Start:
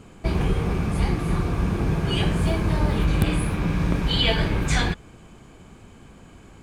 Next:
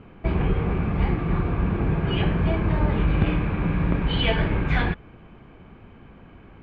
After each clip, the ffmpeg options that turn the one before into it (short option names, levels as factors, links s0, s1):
-af "lowpass=f=2800:w=0.5412,lowpass=f=2800:w=1.3066"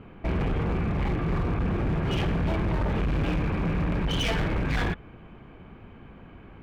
-af "asoftclip=type=hard:threshold=0.0708"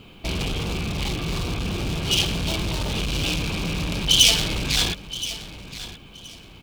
-af "aexciter=amount=12.9:drive=5.2:freq=2800,aecho=1:1:1023|2046:0.188|0.0414,volume=0.891"